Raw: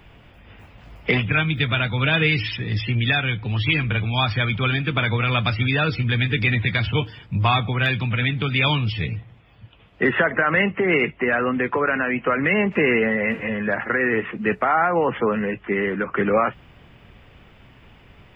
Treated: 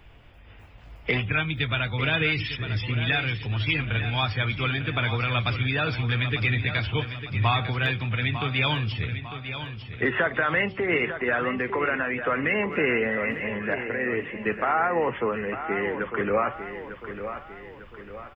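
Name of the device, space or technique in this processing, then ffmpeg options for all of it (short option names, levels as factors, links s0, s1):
low shelf boost with a cut just above: -filter_complex "[0:a]bandreject=f=190.9:t=h:w=4,bandreject=f=381.8:t=h:w=4,bandreject=f=572.7:t=h:w=4,bandreject=f=763.6:t=h:w=4,bandreject=f=954.5:t=h:w=4,bandreject=f=1145.4:t=h:w=4,asettb=1/sr,asplit=3[s0][s1][s2];[s0]atrim=end=13.744[s3];[s1]atrim=start=13.74:end=14.46,asetpts=PTS-STARTPTS,afade=t=in:d=0.004:c=qsin,afade=t=out:st=0.716:d=0.004:c=qsin,equalizer=f=1300:t=o:w=0.54:g=-14[s4];[s2]atrim=start=14.456[s5];[s3][s4]acrossfade=d=0.004:c1=hsin:c2=qsin[s6];[s6][s5]acrossfade=d=0.004:c1=qsin:c2=hsin,lowshelf=f=60:g=7,equalizer=f=190:t=o:w=0.96:g=-5,aecho=1:1:900|1800|2700|3600|4500:0.316|0.145|0.0669|0.0308|0.0142,volume=0.596"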